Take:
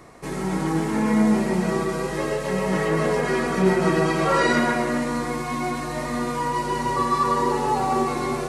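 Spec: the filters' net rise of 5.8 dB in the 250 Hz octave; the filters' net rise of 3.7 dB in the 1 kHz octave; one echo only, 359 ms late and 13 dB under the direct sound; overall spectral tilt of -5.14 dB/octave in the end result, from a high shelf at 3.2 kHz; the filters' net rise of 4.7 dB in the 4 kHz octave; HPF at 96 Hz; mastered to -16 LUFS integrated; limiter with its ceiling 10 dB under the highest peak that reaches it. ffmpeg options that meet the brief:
-af "highpass=96,equalizer=f=250:t=o:g=7.5,equalizer=f=1000:t=o:g=4,highshelf=f=3200:g=-4,equalizer=f=4000:t=o:g=8.5,alimiter=limit=0.224:level=0:latency=1,aecho=1:1:359:0.224,volume=1.88"

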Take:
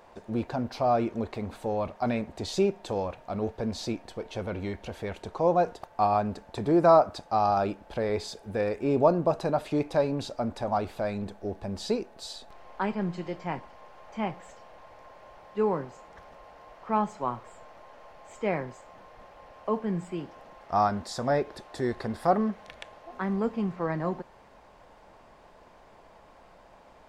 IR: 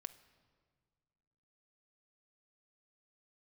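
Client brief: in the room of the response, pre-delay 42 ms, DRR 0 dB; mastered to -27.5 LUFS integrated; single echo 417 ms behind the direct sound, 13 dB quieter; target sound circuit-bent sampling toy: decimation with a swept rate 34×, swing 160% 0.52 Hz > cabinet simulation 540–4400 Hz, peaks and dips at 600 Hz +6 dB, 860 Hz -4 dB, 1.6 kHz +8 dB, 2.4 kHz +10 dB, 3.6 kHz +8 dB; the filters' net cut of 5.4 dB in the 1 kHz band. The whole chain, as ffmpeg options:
-filter_complex "[0:a]equalizer=f=1000:t=o:g=-7.5,aecho=1:1:417:0.224,asplit=2[s0][s1];[1:a]atrim=start_sample=2205,adelay=42[s2];[s1][s2]afir=irnorm=-1:irlink=0,volume=1.68[s3];[s0][s3]amix=inputs=2:normalize=0,acrusher=samples=34:mix=1:aa=0.000001:lfo=1:lforange=54.4:lforate=0.52,highpass=540,equalizer=f=600:t=q:w=4:g=6,equalizer=f=860:t=q:w=4:g=-4,equalizer=f=1600:t=q:w=4:g=8,equalizer=f=2400:t=q:w=4:g=10,equalizer=f=3600:t=q:w=4:g=8,lowpass=f=4400:w=0.5412,lowpass=f=4400:w=1.3066"

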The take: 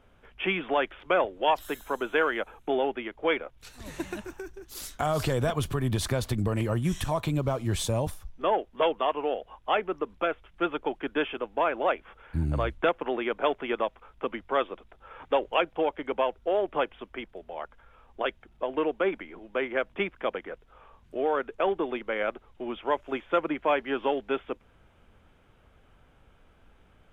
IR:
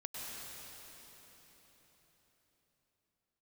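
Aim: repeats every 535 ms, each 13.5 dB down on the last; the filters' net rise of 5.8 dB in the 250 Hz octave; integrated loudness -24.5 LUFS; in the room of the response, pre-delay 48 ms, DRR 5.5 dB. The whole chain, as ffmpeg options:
-filter_complex "[0:a]equalizer=f=250:t=o:g=8,aecho=1:1:535|1070:0.211|0.0444,asplit=2[s0][s1];[1:a]atrim=start_sample=2205,adelay=48[s2];[s1][s2]afir=irnorm=-1:irlink=0,volume=0.501[s3];[s0][s3]amix=inputs=2:normalize=0,volume=1.26"

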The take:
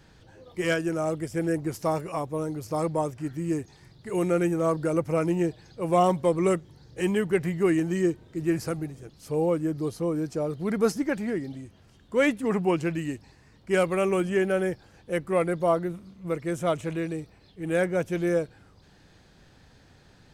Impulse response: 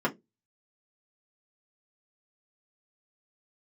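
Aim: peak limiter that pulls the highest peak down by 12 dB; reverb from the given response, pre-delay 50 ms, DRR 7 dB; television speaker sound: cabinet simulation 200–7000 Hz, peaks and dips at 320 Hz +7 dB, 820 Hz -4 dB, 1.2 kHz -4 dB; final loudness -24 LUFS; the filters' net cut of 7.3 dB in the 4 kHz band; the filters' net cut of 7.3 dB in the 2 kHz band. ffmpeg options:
-filter_complex "[0:a]equalizer=f=2000:t=o:g=-7,equalizer=f=4000:t=o:g=-7.5,alimiter=limit=0.0708:level=0:latency=1,asplit=2[s0][s1];[1:a]atrim=start_sample=2205,adelay=50[s2];[s1][s2]afir=irnorm=-1:irlink=0,volume=0.133[s3];[s0][s3]amix=inputs=2:normalize=0,highpass=f=200:w=0.5412,highpass=f=200:w=1.3066,equalizer=f=320:t=q:w=4:g=7,equalizer=f=820:t=q:w=4:g=-4,equalizer=f=1200:t=q:w=4:g=-4,lowpass=f=7000:w=0.5412,lowpass=f=7000:w=1.3066,volume=1.58"

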